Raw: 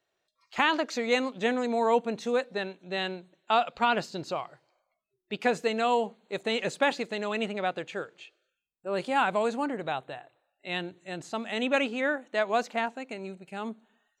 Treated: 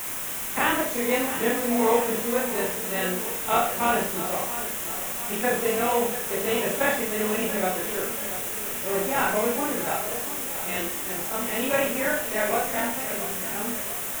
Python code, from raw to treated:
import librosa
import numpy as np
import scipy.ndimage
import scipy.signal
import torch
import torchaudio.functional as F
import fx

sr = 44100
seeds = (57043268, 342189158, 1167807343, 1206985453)

p1 = fx.frame_reverse(x, sr, frame_ms=76.0)
p2 = fx.sample_hold(p1, sr, seeds[0], rate_hz=1500.0, jitter_pct=0)
p3 = p1 + (p2 * librosa.db_to_amplitude(-8.5))
p4 = fx.low_shelf(p3, sr, hz=120.0, db=-11.0)
p5 = fx.echo_feedback(p4, sr, ms=684, feedback_pct=54, wet_db=-12)
p6 = fx.quant_dither(p5, sr, seeds[1], bits=6, dither='triangular')
p7 = fx.peak_eq(p6, sr, hz=4500.0, db=-13.5, octaves=0.62)
p8 = fx.rev_schroeder(p7, sr, rt60_s=0.4, comb_ms=29, drr_db=3.0)
y = p8 * librosa.db_to_amplitude(4.0)